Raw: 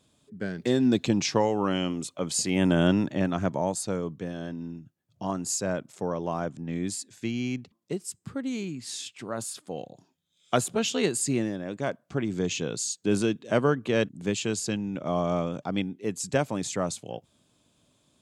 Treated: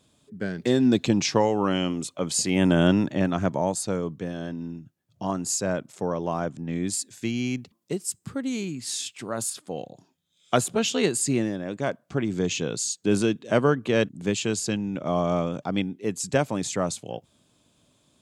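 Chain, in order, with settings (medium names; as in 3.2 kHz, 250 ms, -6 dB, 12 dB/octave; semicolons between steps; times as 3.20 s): 6.93–9.50 s: treble shelf 6.4 kHz +7 dB; trim +2.5 dB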